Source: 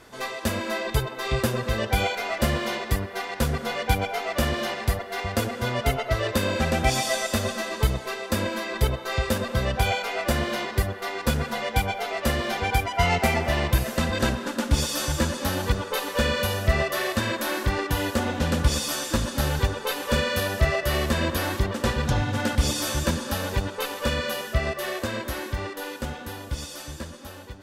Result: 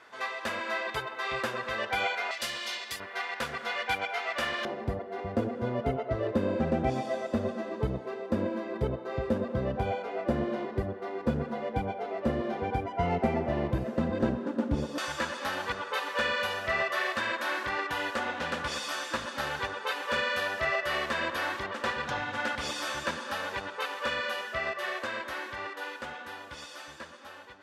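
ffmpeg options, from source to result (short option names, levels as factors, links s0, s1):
-af "asetnsamples=n=441:p=0,asendcmd='2.31 bandpass f 4400;3 bandpass f 1800;4.65 bandpass f 310;14.98 bandpass f 1500',bandpass=f=1500:t=q:w=0.81:csg=0"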